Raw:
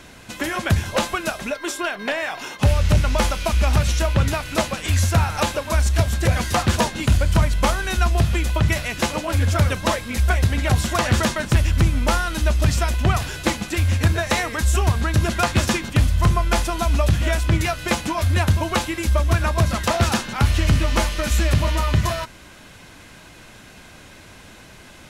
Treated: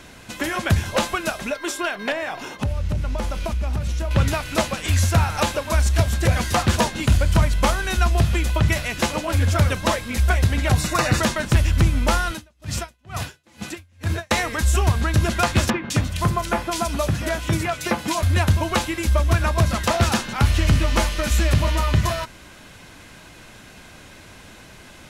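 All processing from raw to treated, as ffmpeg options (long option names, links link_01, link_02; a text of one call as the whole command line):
ffmpeg -i in.wav -filter_complex "[0:a]asettb=1/sr,asplit=3[link_01][link_02][link_03];[link_01]atrim=end=2.124[link_04];[link_02]atrim=start=2.12:end=4.11,asetpts=PTS-STARTPTS,afade=type=in:duration=0.004:curve=qsin,afade=type=out:start_time=1.986:duration=0.004:curve=qsin,tiltshelf=frequency=840:gain=4,acompressor=threshold=-22dB:ratio=4:attack=3.2:release=140:knee=1:detection=peak[link_05];[link_03]atrim=start=4.106[link_06];[link_04][link_05]acrossfade=duration=0.004:curve1=hsin:curve2=qsin[link_07];[link_07][link_06]acrossfade=duration=0.004:curve1=qsin:curve2=hsin,asettb=1/sr,asplit=3[link_08][link_09][link_10];[link_08]atrim=end=10.774[link_11];[link_09]atrim=start=10.77:end=11.21,asetpts=PTS-STARTPTS,afade=type=in:duration=0.004:curve=qsin,afade=type=out:start_time=0.436:duration=0.004:curve=qsin,asuperstop=centerf=3200:order=8:qfactor=7.7,volume=10.5dB,asoftclip=hard,volume=-10.5dB,aecho=1:1:6.5:0.54,atrim=end_sample=19404[link_12];[link_10]atrim=start=11.206[link_13];[link_11][link_12]acrossfade=duration=0.004:curve1=hsin:curve2=qsin[link_14];[link_14][link_13]acrossfade=duration=0.004:curve1=qsin:curve2=hsin,asettb=1/sr,asplit=3[link_15][link_16][link_17];[link_15]atrim=end=12.314[link_18];[link_16]atrim=start=12.31:end=14.31,asetpts=PTS-STARTPTS,afade=type=in:duration=0.004:curve=qsin,afade=type=out:start_time=1.996:duration=0.004:curve=qsin,highpass=frequency=79:width=0.5412,highpass=frequency=79:width=1.3066,aeval=exprs='val(0)*pow(10,-38*(0.5-0.5*cos(2*PI*2.2*n/s))/20)':channel_layout=same[link_19];[link_17]atrim=start=14.306[link_20];[link_18][link_19]acrossfade=duration=0.004:curve1=hsin:curve2=qsin[link_21];[link_21][link_20]acrossfade=duration=0.004:curve1=qsin:curve2=hsin,asettb=1/sr,asplit=3[link_22][link_23][link_24];[link_22]atrim=end=15.704[link_25];[link_23]atrim=start=15.7:end=18.23,asetpts=PTS-STARTPTS,afade=type=in:duration=0.004:curve=qsin,afade=type=out:start_time=2.526:duration=0.004:curve=qsin,highpass=110,acrossover=split=2600[link_26][link_27];[link_27]adelay=200[link_28];[link_26][link_28]amix=inputs=2:normalize=0,atrim=end_sample=111573[link_29];[link_24]atrim=start=18.226[link_30];[link_25][link_29]acrossfade=duration=0.004:curve1=hsin:curve2=qsin[link_31];[link_31][link_30]acrossfade=duration=0.004:curve1=qsin:curve2=hsin" out.wav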